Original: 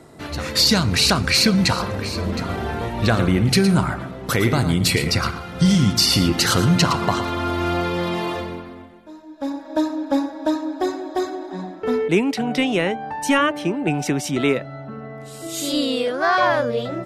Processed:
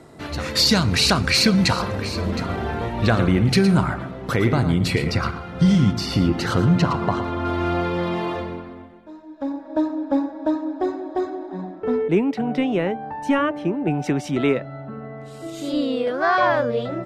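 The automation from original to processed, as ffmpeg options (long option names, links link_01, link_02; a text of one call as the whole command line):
ffmpeg -i in.wav -af "asetnsamples=nb_out_samples=441:pad=0,asendcmd='2.46 lowpass f 3800;4.29 lowpass f 1900;5.91 lowpass f 1100;7.45 lowpass f 2100;9.43 lowpass f 1000;14.04 lowpass f 2100;15.5 lowpass f 1200;16.07 lowpass f 2700',lowpass=frequency=7200:poles=1" out.wav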